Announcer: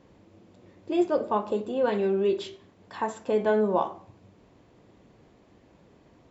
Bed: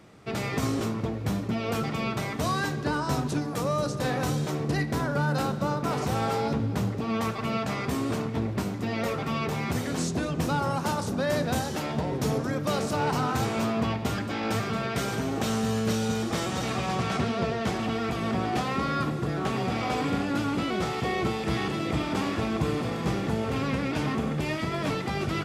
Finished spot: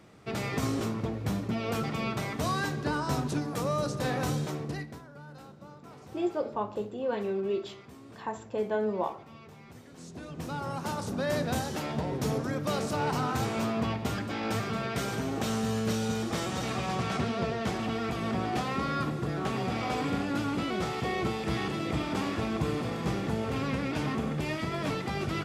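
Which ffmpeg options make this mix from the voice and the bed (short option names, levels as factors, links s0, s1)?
-filter_complex "[0:a]adelay=5250,volume=0.501[s0];[1:a]volume=6.31,afade=t=out:st=4.35:d=0.67:silence=0.112202,afade=t=in:st=9.95:d=1.36:silence=0.11885[s1];[s0][s1]amix=inputs=2:normalize=0"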